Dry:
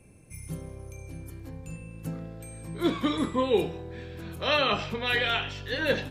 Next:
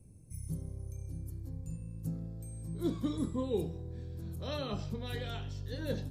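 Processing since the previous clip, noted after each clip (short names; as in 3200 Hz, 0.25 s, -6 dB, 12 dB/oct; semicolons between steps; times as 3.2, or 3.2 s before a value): EQ curve 110 Hz 0 dB, 2600 Hz -25 dB, 4600 Hz -10 dB, 11000 Hz -6 dB; gain +1 dB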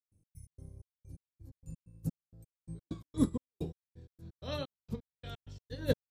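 step gate ".x.x.xx..x." 129 bpm -60 dB; upward expander 2.5:1, over -45 dBFS; gain +8.5 dB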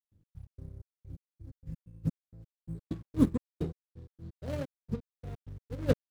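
median filter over 41 samples; gain +4.5 dB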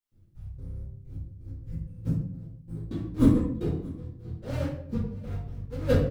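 echo 0.633 s -22.5 dB; shoebox room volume 90 m³, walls mixed, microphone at 2.2 m; gain -3.5 dB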